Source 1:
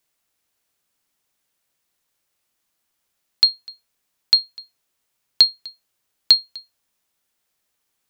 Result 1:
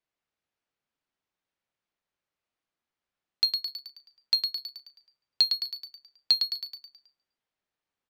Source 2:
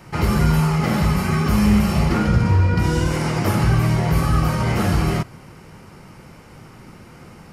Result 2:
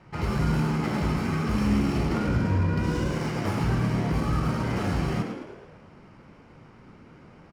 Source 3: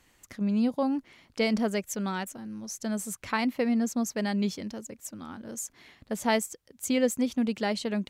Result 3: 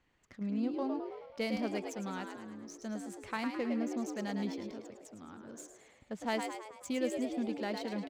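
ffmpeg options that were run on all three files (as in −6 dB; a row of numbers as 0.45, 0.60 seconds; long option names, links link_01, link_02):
-filter_complex "[0:a]asplit=8[link_01][link_02][link_03][link_04][link_05][link_06][link_07][link_08];[link_02]adelay=107,afreqshift=69,volume=-6dB[link_09];[link_03]adelay=214,afreqshift=138,volume=-11.2dB[link_10];[link_04]adelay=321,afreqshift=207,volume=-16.4dB[link_11];[link_05]adelay=428,afreqshift=276,volume=-21.6dB[link_12];[link_06]adelay=535,afreqshift=345,volume=-26.8dB[link_13];[link_07]adelay=642,afreqshift=414,volume=-32dB[link_14];[link_08]adelay=749,afreqshift=483,volume=-37.2dB[link_15];[link_01][link_09][link_10][link_11][link_12][link_13][link_14][link_15]amix=inputs=8:normalize=0,adynamicsmooth=sensitivity=7:basefreq=3800,volume=-9dB"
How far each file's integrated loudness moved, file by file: −10.0, −7.5, −7.5 LU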